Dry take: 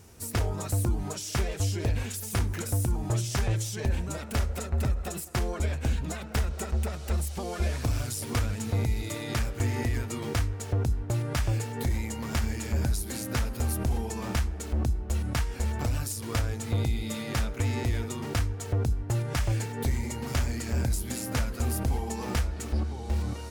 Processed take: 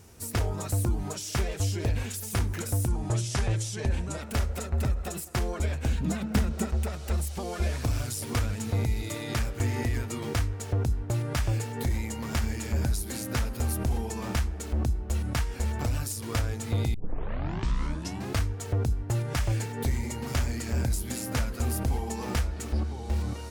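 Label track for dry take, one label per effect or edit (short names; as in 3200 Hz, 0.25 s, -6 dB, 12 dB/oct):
2.880000	4.210000	steep low-pass 11000 Hz
6.000000	6.680000	bell 210 Hz +12.5 dB 0.93 oct
16.940000	16.940000	tape start 1.50 s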